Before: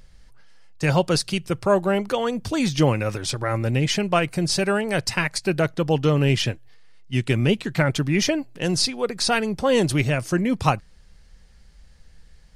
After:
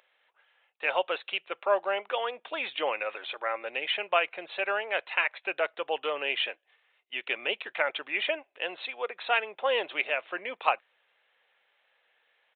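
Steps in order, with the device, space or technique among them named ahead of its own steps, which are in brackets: musical greeting card (downsampling 8000 Hz; HPF 540 Hz 24 dB/oct; bell 2500 Hz +4.5 dB 0.37 oct); gain -4 dB

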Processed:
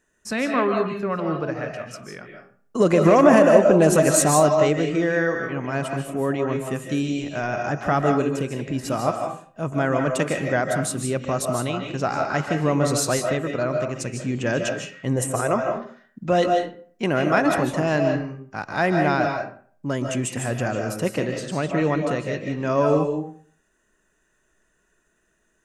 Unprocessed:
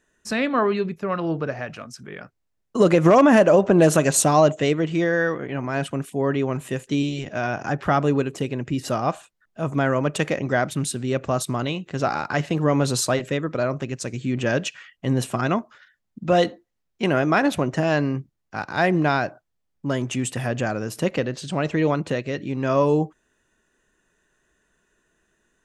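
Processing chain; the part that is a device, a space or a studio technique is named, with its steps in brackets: 15.16–15.56 graphic EQ 250/500/4000/8000 Hz -10/+9/-11/+11 dB; exciter from parts (in parallel at -8 dB: HPF 3300 Hz 24 dB/oct + soft clip -15.5 dBFS, distortion -15 dB); on the sum: digital reverb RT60 0.49 s, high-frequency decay 0.65×, pre-delay 0.11 s, DRR 3 dB; gain -1.5 dB

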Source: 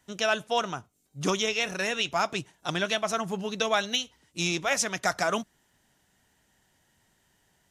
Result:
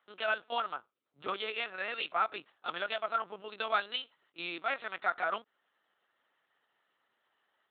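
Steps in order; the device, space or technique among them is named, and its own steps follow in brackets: talking toy (LPC vocoder at 8 kHz pitch kept; HPF 410 Hz 12 dB/oct; bell 1300 Hz +9 dB 0.42 oct); gain -7.5 dB

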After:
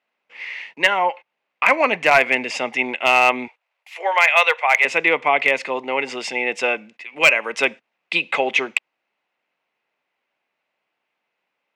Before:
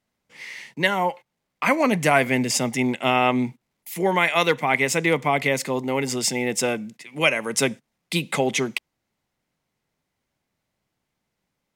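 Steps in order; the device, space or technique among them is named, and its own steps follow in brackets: megaphone (BPF 530–2800 Hz; bell 2600 Hz +8.5 dB 0.34 oct; hard clip -9.5 dBFS, distortion -20 dB); 3.48–4.85 steep high-pass 500 Hz 36 dB/oct; gain +5 dB

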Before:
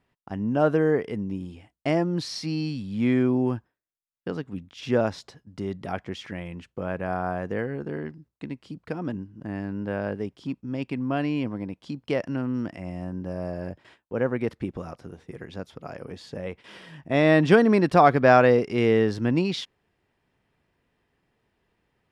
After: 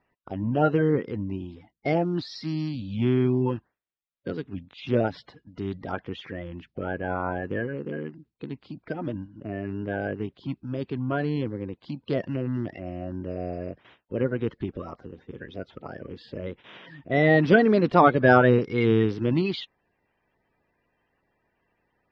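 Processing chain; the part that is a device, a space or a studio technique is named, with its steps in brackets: clip after many re-uploads (LPF 4300 Hz 24 dB/oct; bin magnitudes rounded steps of 30 dB)

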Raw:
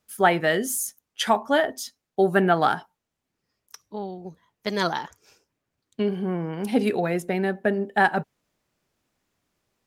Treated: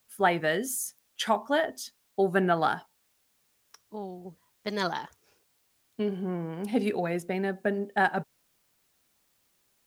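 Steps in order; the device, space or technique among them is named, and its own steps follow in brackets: plain cassette with noise reduction switched in (mismatched tape noise reduction decoder only; wow and flutter 25 cents; white noise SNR 40 dB); gain -5 dB

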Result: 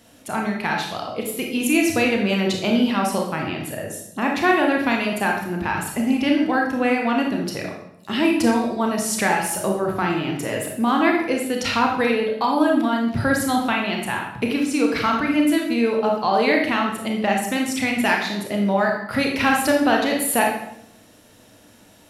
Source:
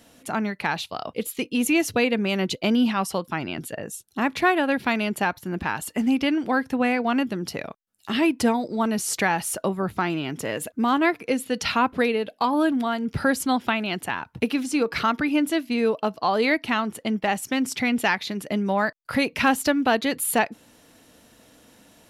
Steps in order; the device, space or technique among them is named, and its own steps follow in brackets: bathroom (reverb RT60 0.75 s, pre-delay 26 ms, DRR 0 dB)

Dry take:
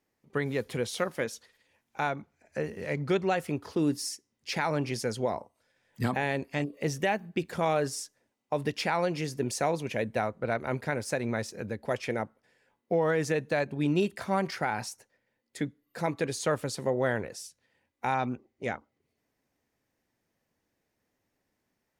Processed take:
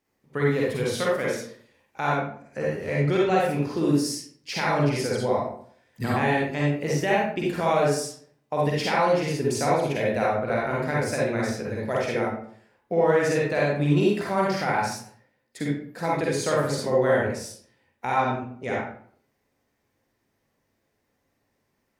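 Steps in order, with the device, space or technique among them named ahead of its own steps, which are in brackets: bathroom (reverb RT60 0.55 s, pre-delay 43 ms, DRR -5 dB)

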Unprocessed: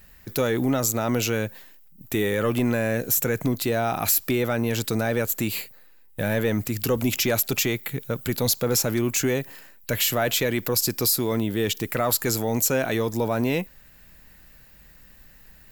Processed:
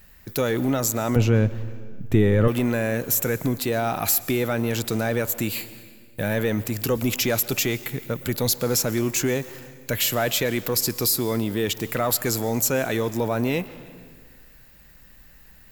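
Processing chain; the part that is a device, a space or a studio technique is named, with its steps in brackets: saturated reverb return (on a send at -11 dB: reverb RT60 1.4 s, pre-delay 0.112 s + soft clip -27.5 dBFS, distortion -8 dB); 1.16–2.48 on the sum: RIAA curve playback

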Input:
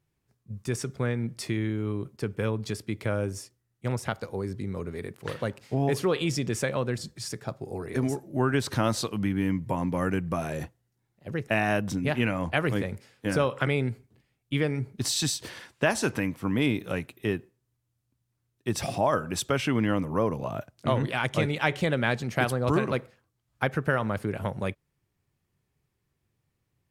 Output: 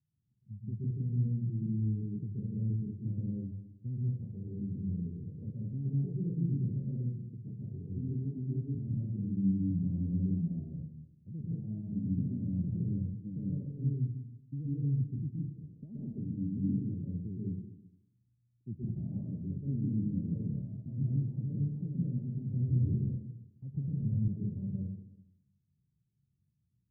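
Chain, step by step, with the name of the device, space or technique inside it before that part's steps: HPF 77 Hz; club heard from the street (limiter -19 dBFS, peak gain reduction 11 dB; LPF 220 Hz 24 dB/oct; reverb RT60 0.85 s, pre-delay 0.118 s, DRR -5.5 dB); 22.49–24.28 bell 96 Hz +11 dB 0.56 oct; gain -5.5 dB

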